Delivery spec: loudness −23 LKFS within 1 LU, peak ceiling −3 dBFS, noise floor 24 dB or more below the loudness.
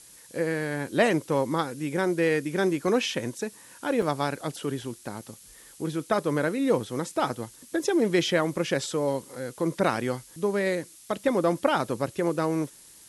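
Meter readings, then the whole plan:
number of dropouts 1; longest dropout 2.8 ms; background noise floor −51 dBFS; target noise floor −52 dBFS; integrated loudness −27.5 LKFS; sample peak −8.0 dBFS; target loudness −23.0 LKFS
→ repair the gap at 0:04.02, 2.8 ms
noise reduction from a noise print 6 dB
level +4.5 dB

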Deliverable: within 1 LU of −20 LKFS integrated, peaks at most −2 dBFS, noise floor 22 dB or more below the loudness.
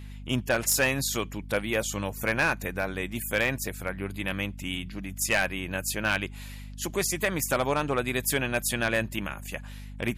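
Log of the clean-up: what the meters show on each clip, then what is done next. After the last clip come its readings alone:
share of clipped samples 0.3%; peaks flattened at −17.0 dBFS; mains hum 50 Hz; hum harmonics up to 250 Hz; level of the hum −39 dBFS; integrated loudness −28.0 LKFS; sample peak −17.0 dBFS; target loudness −20.0 LKFS
→ clipped peaks rebuilt −17 dBFS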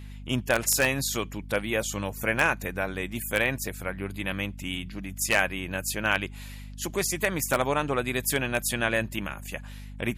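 share of clipped samples 0.0%; mains hum 50 Hz; hum harmonics up to 250 Hz; level of the hum −39 dBFS
→ hum removal 50 Hz, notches 5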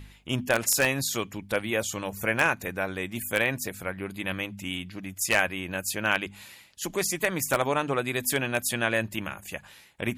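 mains hum none found; integrated loudness −27.5 LKFS; sample peak −7.5 dBFS; target loudness −20.0 LKFS
→ level +7.5 dB
brickwall limiter −2 dBFS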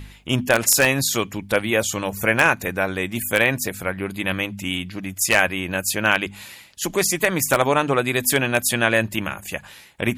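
integrated loudness −20.5 LKFS; sample peak −2.0 dBFS; background noise floor −45 dBFS

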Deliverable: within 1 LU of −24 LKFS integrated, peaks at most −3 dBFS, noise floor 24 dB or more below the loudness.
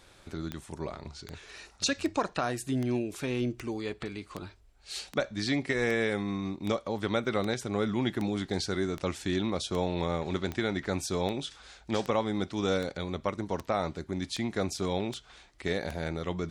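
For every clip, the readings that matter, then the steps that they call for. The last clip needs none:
number of clicks 21; integrated loudness −32.0 LKFS; sample peak −15.5 dBFS; target loudness −24.0 LKFS
→ click removal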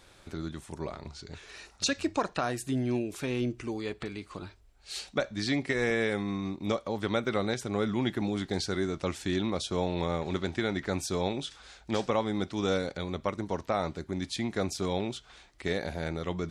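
number of clicks 0; integrated loudness −32.0 LKFS; sample peak −15.5 dBFS; target loudness −24.0 LKFS
→ level +8 dB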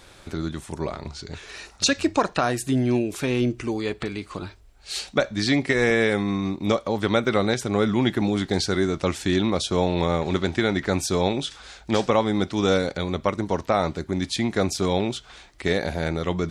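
integrated loudness −24.0 LKFS; sample peak −7.5 dBFS; background noise floor −50 dBFS

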